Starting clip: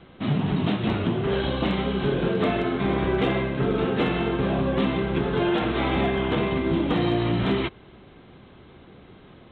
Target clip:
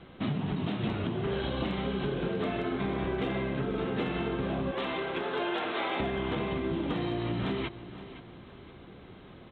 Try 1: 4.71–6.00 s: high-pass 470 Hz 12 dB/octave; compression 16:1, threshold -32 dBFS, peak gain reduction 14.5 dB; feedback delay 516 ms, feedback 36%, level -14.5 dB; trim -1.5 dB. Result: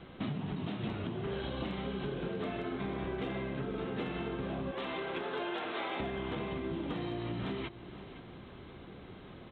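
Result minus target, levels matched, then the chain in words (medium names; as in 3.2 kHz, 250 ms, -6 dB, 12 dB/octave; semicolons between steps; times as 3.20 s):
compression: peak gain reduction +5.5 dB
4.71–6.00 s: high-pass 470 Hz 12 dB/octave; compression 16:1, threshold -26 dBFS, peak gain reduction 8.5 dB; feedback delay 516 ms, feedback 36%, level -14.5 dB; trim -1.5 dB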